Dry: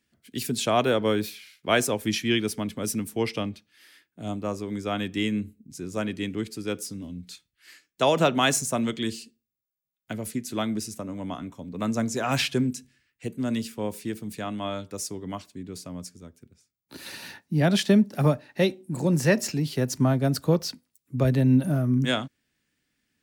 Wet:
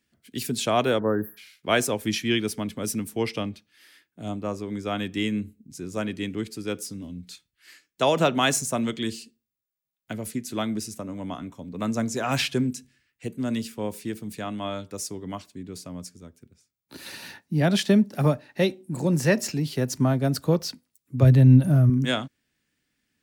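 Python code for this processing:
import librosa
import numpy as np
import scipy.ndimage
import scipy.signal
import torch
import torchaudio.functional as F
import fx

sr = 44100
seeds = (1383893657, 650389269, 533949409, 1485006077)

y = fx.spec_erase(x, sr, start_s=0.99, length_s=0.38, low_hz=1900.0, high_hz=11000.0)
y = fx.high_shelf(y, sr, hz=5300.0, db=-4.0, at=(4.29, 4.85))
y = fx.peak_eq(y, sr, hz=110.0, db=12.0, octaves=0.78, at=(21.22, 21.9))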